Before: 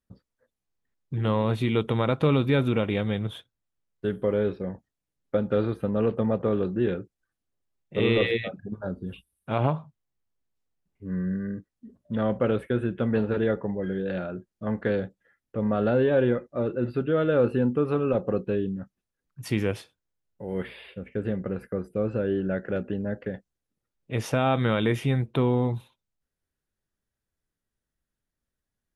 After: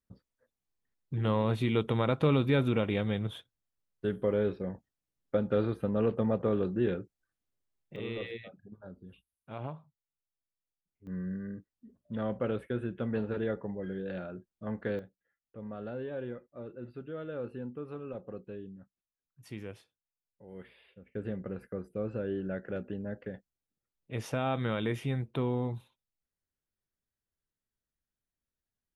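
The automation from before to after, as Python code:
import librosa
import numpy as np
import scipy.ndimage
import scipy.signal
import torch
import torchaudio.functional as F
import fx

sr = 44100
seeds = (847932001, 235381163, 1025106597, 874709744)

y = fx.gain(x, sr, db=fx.steps((0.0, -4.0), (7.96, -15.5), (11.07, -8.0), (14.99, -16.5), (21.15, -8.0)))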